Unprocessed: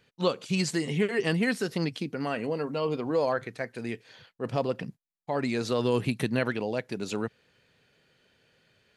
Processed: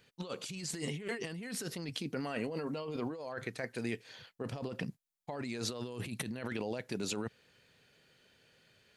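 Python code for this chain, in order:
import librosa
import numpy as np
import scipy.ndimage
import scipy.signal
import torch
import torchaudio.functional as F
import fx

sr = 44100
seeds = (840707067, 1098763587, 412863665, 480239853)

y = fx.high_shelf(x, sr, hz=4300.0, db=6.0)
y = fx.over_compress(y, sr, threshold_db=-33.0, ratio=-1.0)
y = y * librosa.db_to_amplitude(-6.0)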